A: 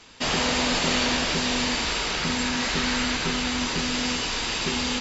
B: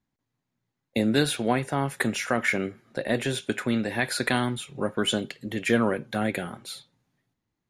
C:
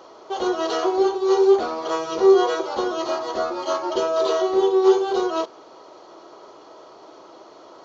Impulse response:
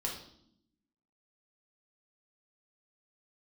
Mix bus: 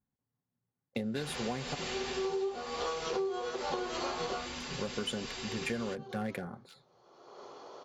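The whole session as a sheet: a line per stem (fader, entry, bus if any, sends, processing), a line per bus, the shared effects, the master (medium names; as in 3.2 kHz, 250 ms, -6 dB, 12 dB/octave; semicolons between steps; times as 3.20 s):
-13.0 dB, 0.95 s, no send, hum notches 50/100/150/200/250 Hz
-5.0 dB, 0.00 s, muted 1.75–4.60 s, no send, local Wiener filter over 15 samples
-2.5 dB, 0.95 s, no send, auto duck -23 dB, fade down 0.30 s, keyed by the second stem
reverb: none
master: comb of notches 320 Hz; compression 16:1, threshold -31 dBFS, peak gain reduction 19 dB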